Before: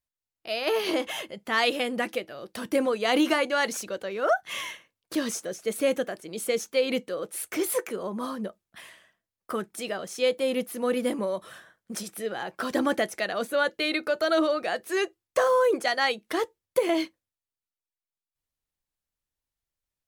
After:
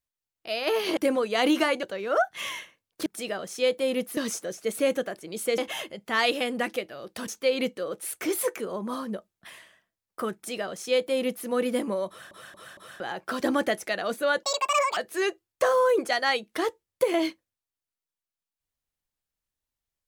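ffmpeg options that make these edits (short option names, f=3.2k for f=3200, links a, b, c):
-filter_complex "[0:a]asplit=13[a][b][c][d][e][f][g][h][i][j][k][l][m];[a]atrim=end=0.972[n];[b]atrim=start=2.668:end=3.532[o];[c]atrim=start=3.948:end=5.182[p];[d]atrim=start=9.658:end=10.772[q];[e]atrim=start=5.178:end=6.592[r];[f]atrim=start=0.968:end=2.672[s];[g]atrim=start=6.588:end=11.622[t];[h]atrim=start=11.388:end=11.622[u];[i]atrim=start=11.388:end=11.622[v];[j]atrim=start=11.388:end=11.622[w];[k]atrim=start=12.308:end=13.744[x];[l]atrim=start=13.74:end=14.72,asetpts=PTS-STARTPTS,asetrate=80262,aresample=44100,atrim=end_sample=23746,asetpts=PTS-STARTPTS[y];[m]atrim=start=14.716[z];[n][o]acrossfade=d=0.004:c1=hsin:c2=hsin[aa];[aa][p]acrossfade=d=0.004:c1=hsin:c2=hsin[ab];[ab][q]acrossfade=d=0.004:c1=hsin:c2=hsin[ac];[ac][r]acrossfade=d=0.004:c1=hsin:c2=hsin[ad];[ad][s]acrossfade=d=0.004:c1=hsin:c2=hsin[ae];[ae][t]acrossfade=d=0.004:c1=hsin:c2=hsin[af];[af][u]acrossfade=d=0.004:c1=hsin:c2=hsin[ag];[ag][v]acrossfade=d=0.004:c1=hsin:c2=hsin[ah];[ah][w]acrossfade=d=0.004:c1=hsin:c2=hsin[ai];[ai][x]acrossfade=d=0.004:c1=hsin:c2=hsin[aj];[aj][y]acrossfade=d=0.004:c1=hsin:c2=hsin[ak];[ak][z]acrossfade=d=0.004:c1=hsin:c2=hsin"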